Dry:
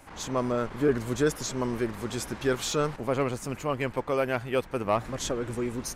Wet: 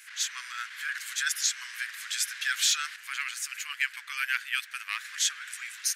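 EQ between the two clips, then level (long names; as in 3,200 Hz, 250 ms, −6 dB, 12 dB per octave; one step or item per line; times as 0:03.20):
elliptic high-pass filter 1,600 Hz, stop band 60 dB
+8.5 dB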